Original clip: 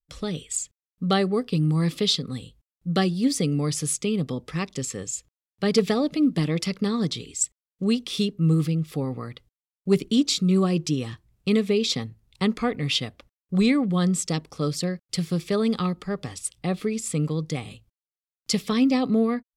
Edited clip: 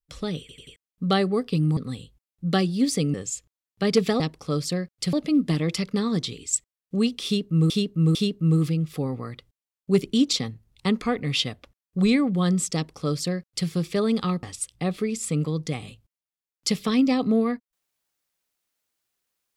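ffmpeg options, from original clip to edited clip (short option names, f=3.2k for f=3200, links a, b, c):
-filter_complex "[0:a]asplit=13[a][b][c][d][e][f][g][h][i][j][k][l][m];[a]atrim=end=0.492[n];[b]atrim=start=0.398:end=0.492[o];[c]atrim=start=0.398:end=0.492[p];[d]atrim=start=0.398:end=0.492[q];[e]atrim=start=0.758:end=1.772[r];[f]atrim=start=2.198:end=3.572[s];[g]atrim=start=4.948:end=6.012[t];[h]atrim=start=14.308:end=15.242[u];[i]atrim=start=6.008:end=8.582[v];[j]atrim=start=8.128:end=8.582[w];[k]atrim=start=8.128:end=10.312[x];[l]atrim=start=11.888:end=15.992[y];[m]atrim=start=16.258[z];[n][o]acrossfade=d=0.004:c1=hsin:c2=hsin[aa];[aa][p]acrossfade=d=0.004:c1=hsin:c2=hsin[ab];[ab][q]acrossfade=d=0.004:c1=hsin:c2=hsin[ac];[ac][r]acrossfade=d=0.004:c1=hsin:c2=hsin[ad];[ad][s]acrossfade=d=0.004:c1=hsin:c2=hsin[ae];[ae][t]acrossfade=d=0.004:c1=hsin:c2=hsin[af];[af][u]acrossfade=d=0.004:c1=hsin:c2=hsin[ag];[ag][v]acrossfade=d=0.004:c1=hsin:c2=hsin[ah];[ah][w]acrossfade=d=0.004:c1=hsin:c2=hsin[ai];[ai][x]acrossfade=d=0.004:c1=hsin:c2=hsin[aj];[aj][y]acrossfade=d=0.004:c1=hsin:c2=hsin[ak];[ak][z]acrossfade=d=0.004:c1=hsin:c2=hsin"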